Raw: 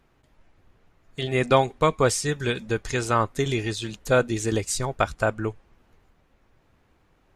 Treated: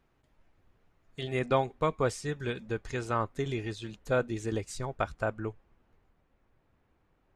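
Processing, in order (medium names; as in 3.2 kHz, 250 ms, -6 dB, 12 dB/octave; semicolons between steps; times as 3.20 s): treble shelf 3.8 kHz -2.5 dB, from 1.39 s -10 dB; trim -7.5 dB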